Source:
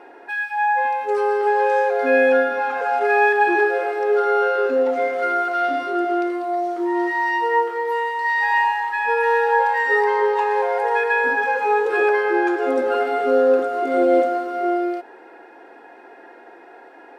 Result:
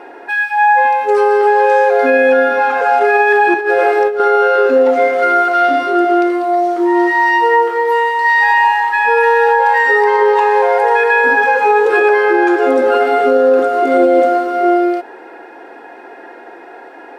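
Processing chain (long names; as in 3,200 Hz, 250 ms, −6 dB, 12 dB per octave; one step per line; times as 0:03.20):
0:03.54–0:04.20: compressor whose output falls as the input rises −21 dBFS, ratio −0.5
boost into a limiter +11 dB
level −2 dB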